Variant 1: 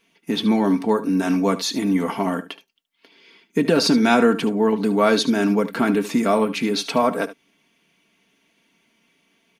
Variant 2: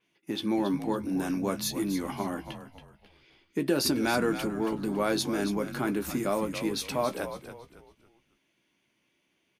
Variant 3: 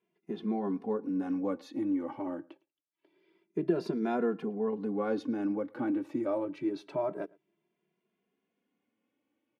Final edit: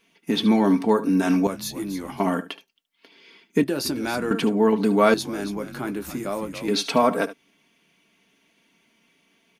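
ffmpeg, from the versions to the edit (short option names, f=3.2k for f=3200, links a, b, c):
-filter_complex "[1:a]asplit=3[a][b][c];[0:a]asplit=4[d][e][f][g];[d]atrim=end=1.472[h];[a]atrim=start=1.468:end=2.202[i];[e]atrim=start=2.198:end=3.642[j];[b]atrim=start=3.638:end=4.312[k];[f]atrim=start=4.308:end=5.142[l];[c]atrim=start=5.138:end=6.682[m];[g]atrim=start=6.678[n];[h][i]acrossfade=d=0.004:c1=hsin:c2=hsin[o];[o][j]acrossfade=d=0.004:c1=hsin:c2=hsin[p];[p][k]acrossfade=d=0.004:c1=hsin:c2=hsin[q];[q][l]acrossfade=d=0.004:c1=hsin:c2=hsin[r];[r][m]acrossfade=d=0.004:c1=hsin:c2=hsin[s];[s][n]acrossfade=d=0.004:c1=hsin:c2=hsin"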